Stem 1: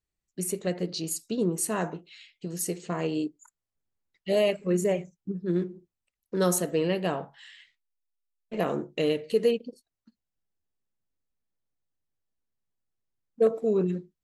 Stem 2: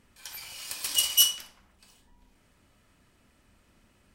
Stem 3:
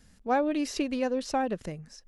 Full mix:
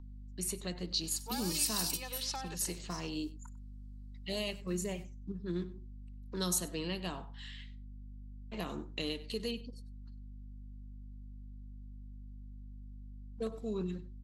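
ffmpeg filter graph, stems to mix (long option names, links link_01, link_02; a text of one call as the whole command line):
ffmpeg -i stem1.wav -i stem2.wav -i stem3.wav -filter_complex "[0:a]aeval=exprs='val(0)+0.01*(sin(2*PI*50*n/s)+sin(2*PI*2*50*n/s)/2+sin(2*PI*3*50*n/s)/3+sin(2*PI*4*50*n/s)/4+sin(2*PI*5*50*n/s)/5)':channel_layout=same,volume=-5dB,asplit=3[link_01][link_02][link_03];[link_02]volume=-20dB[link_04];[1:a]aexciter=amount=3.6:drive=6.9:freq=4000,adelay=950,volume=-12dB[link_05];[2:a]highpass=frequency=1200:poles=1,adelay=1000,volume=-4dB,asplit=2[link_06][link_07];[link_07]volume=-9dB[link_08];[link_03]apad=whole_len=224797[link_09];[link_05][link_09]sidechaingate=range=-25dB:threshold=-36dB:ratio=16:detection=peak[link_10];[link_10][link_06]amix=inputs=2:normalize=0,aecho=1:1:2.3:0.83,alimiter=limit=-24dB:level=0:latency=1:release=240,volume=0dB[link_11];[link_04][link_08]amix=inputs=2:normalize=0,aecho=0:1:97:1[link_12];[link_01][link_11][link_12]amix=inputs=3:normalize=0,equalizer=frequency=125:width_type=o:width=1:gain=-7,equalizer=frequency=500:width_type=o:width=1:gain=-7,equalizer=frequency=1000:width_type=o:width=1:gain=9,equalizer=frequency=4000:width_type=o:width=1:gain=8,acrossover=split=340|3000[link_13][link_14][link_15];[link_14]acompressor=threshold=-48dB:ratio=2.5[link_16];[link_13][link_16][link_15]amix=inputs=3:normalize=0" out.wav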